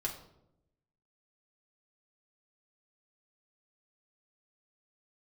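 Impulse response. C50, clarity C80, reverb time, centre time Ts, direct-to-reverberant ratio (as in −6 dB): 8.5 dB, 11.5 dB, 0.80 s, 20 ms, −2.0 dB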